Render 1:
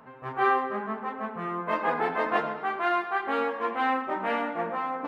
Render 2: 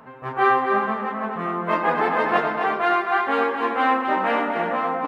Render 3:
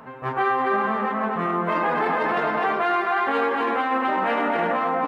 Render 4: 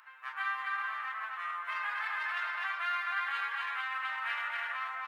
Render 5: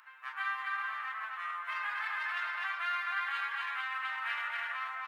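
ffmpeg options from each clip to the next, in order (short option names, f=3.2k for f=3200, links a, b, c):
-af "aecho=1:1:256|372|473:0.501|0.178|0.211,volume=5.5dB"
-af "alimiter=limit=-17.5dB:level=0:latency=1:release=23,volume=3dB"
-af "highpass=f=1.4k:w=0.5412,highpass=f=1.4k:w=1.3066,volume=-5dB"
-af "lowshelf=f=440:g=-8.5"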